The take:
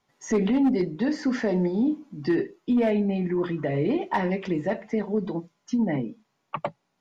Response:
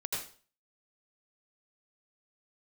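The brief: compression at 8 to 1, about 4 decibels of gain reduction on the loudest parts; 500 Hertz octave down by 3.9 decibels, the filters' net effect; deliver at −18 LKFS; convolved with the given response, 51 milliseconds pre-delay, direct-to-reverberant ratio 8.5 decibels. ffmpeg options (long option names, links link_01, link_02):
-filter_complex "[0:a]equalizer=frequency=500:width_type=o:gain=-5.5,acompressor=threshold=-24dB:ratio=8,asplit=2[link_01][link_02];[1:a]atrim=start_sample=2205,adelay=51[link_03];[link_02][link_03]afir=irnorm=-1:irlink=0,volume=-12dB[link_04];[link_01][link_04]amix=inputs=2:normalize=0,volume=12dB"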